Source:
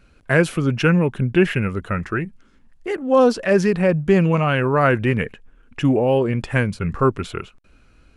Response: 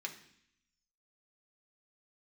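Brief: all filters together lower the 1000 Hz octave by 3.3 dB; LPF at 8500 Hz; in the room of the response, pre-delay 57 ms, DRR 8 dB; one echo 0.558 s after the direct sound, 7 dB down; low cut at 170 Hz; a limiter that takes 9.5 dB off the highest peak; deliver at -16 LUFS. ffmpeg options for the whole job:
-filter_complex "[0:a]highpass=170,lowpass=8.5k,equalizer=f=1k:t=o:g=-4.5,alimiter=limit=-13.5dB:level=0:latency=1,aecho=1:1:558:0.447,asplit=2[a][b];[1:a]atrim=start_sample=2205,adelay=57[c];[b][c]afir=irnorm=-1:irlink=0,volume=-7.5dB[d];[a][d]amix=inputs=2:normalize=0,volume=8dB"

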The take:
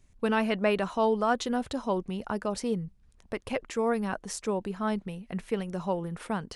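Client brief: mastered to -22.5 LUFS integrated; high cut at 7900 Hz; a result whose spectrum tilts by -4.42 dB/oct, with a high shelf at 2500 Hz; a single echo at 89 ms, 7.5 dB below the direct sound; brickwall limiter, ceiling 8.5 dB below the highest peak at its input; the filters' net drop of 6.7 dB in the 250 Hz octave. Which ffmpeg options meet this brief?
-af "lowpass=7.9k,equalizer=f=250:t=o:g=-8.5,highshelf=f=2.5k:g=-4,alimiter=limit=-23.5dB:level=0:latency=1,aecho=1:1:89:0.422,volume=12.5dB"

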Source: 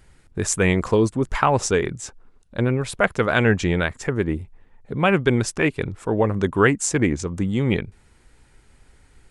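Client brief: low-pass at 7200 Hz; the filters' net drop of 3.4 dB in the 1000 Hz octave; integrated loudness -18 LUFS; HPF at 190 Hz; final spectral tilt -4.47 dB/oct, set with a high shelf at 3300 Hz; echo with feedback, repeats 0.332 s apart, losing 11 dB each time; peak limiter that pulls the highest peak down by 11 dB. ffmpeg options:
-af "highpass=190,lowpass=7.2k,equalizer=f=1k:t=o:g=-5,highshelf=f=3.3k:g=3,alimiter=limit=-13dB:level=0:latency=1,aecho=1:1:332|664|996:0.282|0.0789|0.0221,volume=8dB"

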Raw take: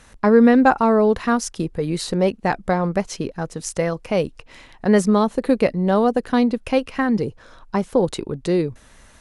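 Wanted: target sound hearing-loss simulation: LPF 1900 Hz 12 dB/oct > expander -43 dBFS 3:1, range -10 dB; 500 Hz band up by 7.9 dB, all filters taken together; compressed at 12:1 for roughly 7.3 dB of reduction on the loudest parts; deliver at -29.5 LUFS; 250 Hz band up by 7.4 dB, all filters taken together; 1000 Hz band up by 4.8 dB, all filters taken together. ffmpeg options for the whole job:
-af "equalizer=f=250:t=o:g=7,equalizer=f=500:t=o:g=6.5,equalizer=f=1k:t=o:g=3.5,acompressor=threshold=-8dB:ratio=12,lowpass=1.9k,agate=range=-10dB:threshold=-43dB:ratio=3,volume=-13.5dB"

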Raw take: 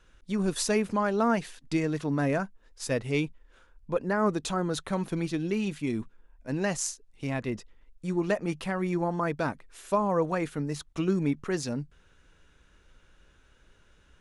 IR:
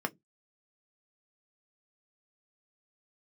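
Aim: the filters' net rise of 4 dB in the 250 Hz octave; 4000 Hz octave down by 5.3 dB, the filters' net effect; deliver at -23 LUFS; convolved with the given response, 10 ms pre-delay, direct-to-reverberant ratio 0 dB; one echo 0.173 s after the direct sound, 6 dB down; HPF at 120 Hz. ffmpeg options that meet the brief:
-filter_complex "[0:a]highpass=120,equalizer=f=250:t=o:g=6,equalizer=f=4k:t=o:g=-7,aecho=1:1:173:0.501,asplit=2[a][b];[1:a]atrim=start_sample=2205,adelay=10[c];[b][c]afir=irnorm=-1:irlink=0,volume=-5.5dB[d];[a][d]amix=inputs=2:normalize=0,volume=-1dB"

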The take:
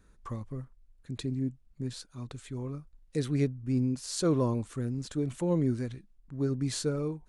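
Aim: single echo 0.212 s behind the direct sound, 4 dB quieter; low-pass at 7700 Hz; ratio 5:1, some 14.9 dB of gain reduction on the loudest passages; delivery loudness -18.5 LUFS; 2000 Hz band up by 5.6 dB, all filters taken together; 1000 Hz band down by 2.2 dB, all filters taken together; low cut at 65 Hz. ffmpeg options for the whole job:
-af "highpass=65,lowpass=7.7k,equalizer=f=1k:t=o:g=-5,equalizer=f=2k:t=o:g=8.5,acompressor=threshold=-41dB:ratio=5,aecho=1:1:212:0.631,volume=25dB"

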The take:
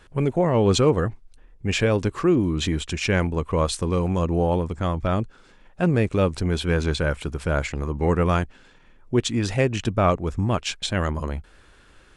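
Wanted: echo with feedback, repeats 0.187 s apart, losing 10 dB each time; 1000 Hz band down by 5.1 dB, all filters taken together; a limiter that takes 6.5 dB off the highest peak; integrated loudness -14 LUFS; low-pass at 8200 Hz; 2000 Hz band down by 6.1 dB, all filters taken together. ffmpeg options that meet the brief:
-af "lowpass=8.2k,equalizer=f=1k:t=o:g=-5,equalizer=f=2k:t=o:g=-6.5,alimiter=limit=-14.5dB:level=0:latency=1,aecho=1:1:187|374|561|748:0.316|0.101|0.0324|0.0104,volume=11.5dB"

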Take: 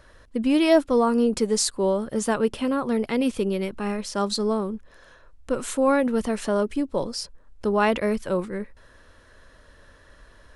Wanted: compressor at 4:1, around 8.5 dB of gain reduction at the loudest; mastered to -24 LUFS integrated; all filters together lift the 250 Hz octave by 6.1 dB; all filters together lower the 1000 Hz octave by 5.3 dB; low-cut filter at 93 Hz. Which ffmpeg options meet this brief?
-af "highpass=93,equalizer=f=250:t=o:g=7.5,equalizer=f=1k:t=o:g=-7.5,acompressor=threshold=-22dB:ratio=4,volume=2.5dB"

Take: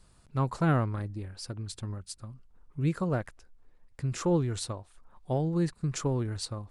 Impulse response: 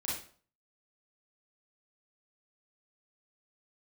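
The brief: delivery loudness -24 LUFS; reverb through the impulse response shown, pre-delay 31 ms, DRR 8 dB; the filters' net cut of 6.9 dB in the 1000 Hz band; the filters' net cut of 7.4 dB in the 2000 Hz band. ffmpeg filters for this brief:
-filter_complex "[0:a]equalizer=f=1k:t=o:g=-7.5,equalizer=f=2k:t=o:g=-7,asplit=2[a][b];[1:a]atrim=start_sample=2205,adelay=31[c];[b][c]afir=irnorm=-1:irlink=0,volume=-11dB[d];[a][d]amix=inputs=2:normalize=0,volume=7.5dB"

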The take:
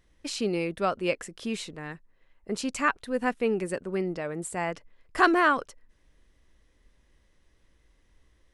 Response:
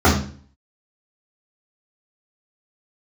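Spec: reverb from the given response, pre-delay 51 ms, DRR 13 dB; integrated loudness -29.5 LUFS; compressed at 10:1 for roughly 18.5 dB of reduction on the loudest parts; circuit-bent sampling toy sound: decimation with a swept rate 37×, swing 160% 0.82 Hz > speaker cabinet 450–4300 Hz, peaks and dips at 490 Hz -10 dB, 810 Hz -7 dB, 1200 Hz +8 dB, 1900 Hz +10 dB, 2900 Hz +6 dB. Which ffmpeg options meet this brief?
-filter_complex "[0:a]acompressor=threshold=-34dB:ratio=10,asplit=2[a][b];[1:a]atrim=start_sample=2205,adelay=51[c];[b][c]afir=irnorm=-1:irlink=0,volume=-37.5dB[d];[a][d]amix=inputs=2:normalize=0,acrusher=samples=37:mix=1:aa=0.000001:lfo=1:lforange=59.2:lforate=0.82,highpass=450,equalizer=f=490:t=q:w=4:g=-10,equalizer=f=810:t=q:w=4:g=-7,equalizer=f=1.2k:t=q:w=4:g=8,equalizer=f=1.9k:t=q:w=4:g=10,equalizer=f=2.9k:t=q:w=4:g=6,lowpass=f=4.3k:w=0.5412,lowpass=f=4.3k:w=1.3066,volume=11dB"

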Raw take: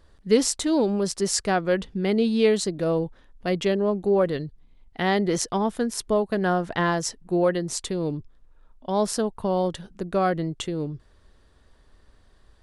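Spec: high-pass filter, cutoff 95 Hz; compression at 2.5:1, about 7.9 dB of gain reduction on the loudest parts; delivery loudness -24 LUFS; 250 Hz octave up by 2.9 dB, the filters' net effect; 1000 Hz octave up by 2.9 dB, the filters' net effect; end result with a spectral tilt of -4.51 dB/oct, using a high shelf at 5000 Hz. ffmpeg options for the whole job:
-af "highpass=95,equalizer=f=250:t=o:g=4,equalizer=f=1k:t=o:g=3.5,highshelf=f=5k:g=4,acompressor=threshold=-24dB:ratio=2.5,volume=3.5dB"

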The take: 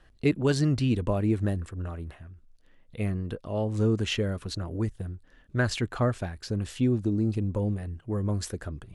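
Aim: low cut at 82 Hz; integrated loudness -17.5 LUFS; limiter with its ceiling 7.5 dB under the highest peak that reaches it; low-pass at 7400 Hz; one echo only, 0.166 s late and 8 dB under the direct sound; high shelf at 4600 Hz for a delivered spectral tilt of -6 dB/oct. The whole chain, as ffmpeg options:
-af "highpass=82,lowpass=7.4k,highshelf=f=4.6k:g=9,alimiter=limit=-19dB:level=0:latency=1,aecho=1:1:166:0.398,volume=12.5dB"

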